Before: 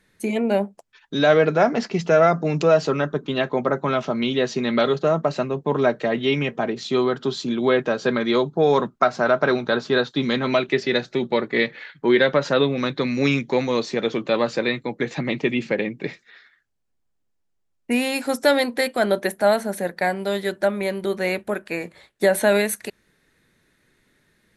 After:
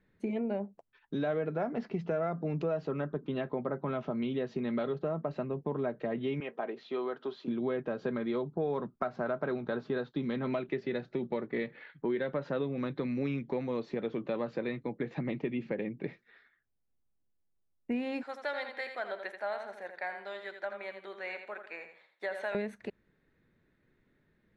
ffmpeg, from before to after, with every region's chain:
ffmpeg -i in.wav -filter_complex "[0:a]asettb=1/sr,asplit=3[link_01][link_02][link_03];[link_01]atrim=end=6.404[link_04];[link_02]atrim=start=6.4:end=7.48,asetpts=PTS-STARTPTS,afade=type=in:duration=0.004:curve=qsin,afade=type=out:start_time=1.076:duration=0.004:curve=qsin,acrossover=split=4500[link_05][link_06];[link_06]acompressor=threshold=-46dB:ratio=4:attack=1:release=60[link_07];[link_05][link_07]amix=inputs=2:normalize=0,highpass=460,lowpass=7500[link_08];[link_03]atrim=start=7.476[link_09];[link_04][link_08]acrossfade=duration=0.004:curve1=hsin:curve2=qsin[link_10];[link_10][link_09]acrossfade=duration=0.004:curve1=qsin:curve2=hsin,asettb=1/sr,asplit=3[link_11][link_12][link_13];[link_11]atrim=end=18.234[link_14];[link_12]atrim=start=18.23:end=22.55,asetpts=PTS-STARTPTS,afade=type=in:duration=0.004:curve=qsin,afade=type=out:start_time=4.316:duration=0.004:curve=qsin,highpass=990,aecho=1:1:83|166|249|332:0.398|0.127|0.0408|0.013,atrim=end_sample=190512[link_15];[link_13]atrim=start=22.546[link_16];[link_14][link_15]acrossfade=duration=0.004:curve1=hsin:curve2=qsin[link_17];[link_17][link_16]acrossfade=duration=0.004:curve1=qsin:curve2=hsin,lowpass=2800,tiltshelf=frequency=730:gain=4,acompressor=threshold=-23dB:ratio=3,volume=-8.5dB" out.wav

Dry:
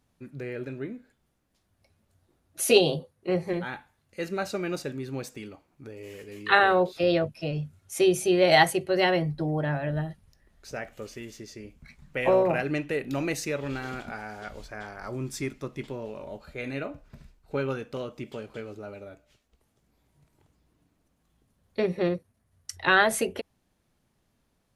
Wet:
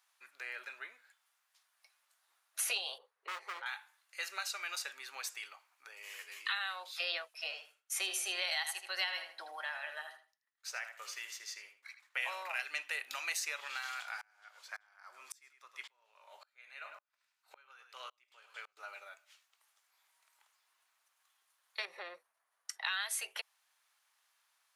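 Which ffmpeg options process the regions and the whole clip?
ffmpeg -i in.wav -filter_complex "[0:a]asettb=1/sr,asplit=3[link_01][link_02][link_03];[link_01]atrim=end=2.984[link_04];[link_02]atrim=start=2.98:end=3.66,asetpts=PTS-STARTPTS,afade=type=in:duration=0.004:curve=qsin,afade=type=out:start_time=0.676:duration=0.004:curve=qsin,lowpass=frequency=1300:poles=1,equalizer=frequency=430:width=5.4:gain=15,asoftclip=type=hard:threshold=-25.5dB[link_05];[link_03]atrim=start=3.656[link_06];[link_04][link_05]acrossfade=duration=0.004:curve1=hsin:curve2=qsin[link_07];[link_07][link_06]acrossfade=duration=0.004:curve1=qsin:curve2=hsin,asettb=1/sr,asplit=3[link_08][link_09][link_10];[link_08]atrim=end=7.264[link_11];[link_09]atrim=start=7.26:end=12.25,asetpts=PTS-STARTPTS,afade=type=in:duration=0.004:curve=qsin,afade=type=out:start_time=4.986:duration=0.004:curve=qsin,agate=range=-33dB:threshold=-48dB:ratio=3:release=100:detection=peak,highpass=220,asplit=2[link_12][link_13];[link_13]adelay=79,lowpass=frequency=4400:poles=1,volume=-9.5dB,asplit=2[link_14][link_15];[link_15]adelay=79,lowpass=frequency=4400:poles=1,volume=0.23,asplit=2[link_16][link_17];[link_17]adelay=79,lowpass=frequency=4400:poles=1,volume=0.23[link_18];[link_12][link_14][link_16][link_18]amix=inputs=4:normalize=0,atrim=end_sample=220059[link_19];[link_10]atrim=start=12.246[link_20];[link_11][link_19]acrossfade=duration=0.004:curve1=hsin:curve2=qsin[link_21];[link_21][link_20]acrossfade=duration=0.004:curve1=qsin:curve2=hsin,asettb=1/sr,asplit=3[link_22][link_23][link_24];[link_22]atrim=end=14.214[link_25];[link_23]atrim=start=14.21:end=18.77,asetpts=PTS-STARTPTS,afade=type=in:duration=0.004:curve=qsin,afade=type=out:start_time=4.556:duration=0.004:curve=qsin,aecho=1:1:104:0.224,atrim=end_sample=201096,aeval=exprs='val(0)*pow(10,-34*if(lt(mod(-1.8*n/s,1),2*abs(-1.8)/1000),1-mod(-1.8*n/s,1)/(2*abs(-1.8)/1000),(mod(-1.8*n/s,1)-2*abs(-1.8)/1000)/(1-2*abs(-1.8)/1000))/20)':channel_layout=same[link_26];[link_24]atrim=start=18.766[link_27];[link_25][link_26]acrossfade=duration=0.004:curve1=hsin:curve2=qsin[link_28];[link_28][link_27]acrossfade=duration=0.004:curve1=qsin:curve2=hsin,asettb=1/sr,asplit=3[link_29][link_30][link_31];[link_29]atrim=end=21.854[link_32];[link_30]atrim=start=21.85:end=22.85,asetpts=PTS-STARTPTS,afade=type=in:duration=0.004:curve=qsin,afade=type=out:start_time=0.996:duration=0.004:curve=qsin,tiltshelf=frequency=1200:gain=8.5,acompressor=threshold=-22dB:ratio=2.5:attack=3.2:release=140:knee=1:detection=peak[link_33];[link_31]atrim=start=22.846[link_34];[link_32][link_33]acrossfade=duration=0.004:curve1=hsin:curve2=qsin[link_35];[link_35][link_34]acrossfade=duration=0.004:curve1=qsin:curve2=hsin,highpass=frequency=1000:width=0.5412,highpass=frequency=1000:width=1.3066,alimiter=limit=-16.5dB:level=0:latency=1:release=434,acrossover=split=1300|2600[link_36][link_37][link_38];[link_36]acompressor=threshold=-51dB:ratio=4[link_39];[link_37]acompressor=threshold=-49dB:ratio=4[link_40];[link_38]acompressor=threshold=-39dB:ratio=4[link_41];[link_39][link_40][link_41]amix=inputs=3:normalize=0,volume=3.5dB" out.wav

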